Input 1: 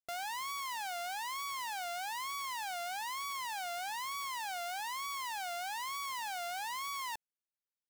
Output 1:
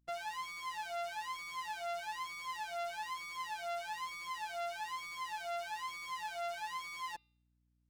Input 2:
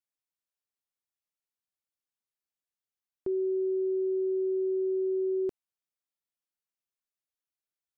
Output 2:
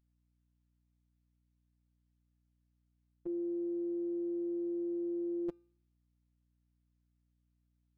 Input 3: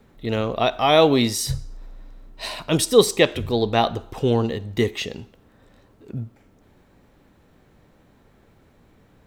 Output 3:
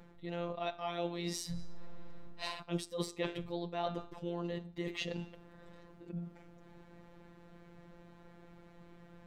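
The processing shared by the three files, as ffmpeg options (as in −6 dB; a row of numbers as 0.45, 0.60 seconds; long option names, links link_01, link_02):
-af "aemphasis=mode=reproduction:type=50kf,bandreject=frequency=398.6:width_type=h:width=4,bandreject=frequency=797.2:width_type=h:width=4,bandreject=frequency=1195.8:width_type=h:width=4,bandreject=frequency=1594.4:width_type=h:width=4,bandreject=frequency=1993:width_type=h:width=4,bandreject=frequency=2391.6:width_type=h:width=4,bandreject=frequency=2790.2:width_type=h:width=4,bandreject=frequency=3188.8:width_type=h:width=4,bandreject=frequency=3587.4:width_type=h:width=4,bandreject=frequency=3986:width_type=h:width=4,bandreject=frequency=4384.6:width_type=h:width=4,bandreject=frequency=4783.2:width_type=h:width=4,bandreject=frequency=5181.8:width_type=h:width=4,bandreject=frequency=5580.4:width_type=h:width=4,areverse,acompressor=threshold=-35dB:ratio=6,areverse,afftfilt=real='hypot(re,im)*cos(PI*b)':imag='0':win_size=1024:overlap=0.75,aeval=exprs='val(0)+0.000126*(sin(2*PI*60*n/s)+sin(2*PI*2*60*n/s)/2+sin(2*PI*3*60*n/s)/3+sin(2*PI*4*60*n/s)/4+sin(2*PI*5*60*n/s)/5)':channel_layout=same,volume=3dB"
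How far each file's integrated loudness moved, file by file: −3.0, −7.0, −19.5 LU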